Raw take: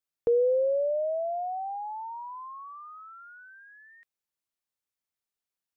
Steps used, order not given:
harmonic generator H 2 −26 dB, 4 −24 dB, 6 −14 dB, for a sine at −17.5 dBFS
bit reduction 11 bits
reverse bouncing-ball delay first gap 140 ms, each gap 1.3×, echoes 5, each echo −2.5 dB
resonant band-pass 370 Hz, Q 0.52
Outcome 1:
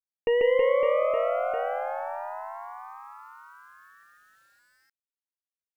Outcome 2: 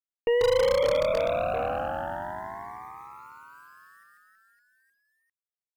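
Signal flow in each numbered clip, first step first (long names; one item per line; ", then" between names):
resonant band-pass, then harmonic generator, then reverse bouncing-ball delay, then bit reduction
resonant band-pass, then bit reduction, then reverse bouncing-ball delay, then harmonic generator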